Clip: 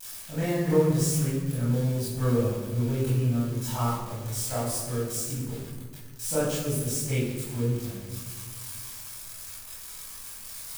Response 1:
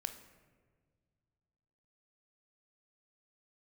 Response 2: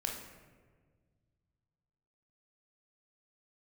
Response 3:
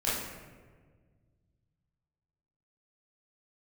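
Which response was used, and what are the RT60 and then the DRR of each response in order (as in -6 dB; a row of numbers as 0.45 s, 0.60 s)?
3; 1.7 s, 1.6 s, 1.6 s; 7.5 dB, 0.0 dB, -10.0 dB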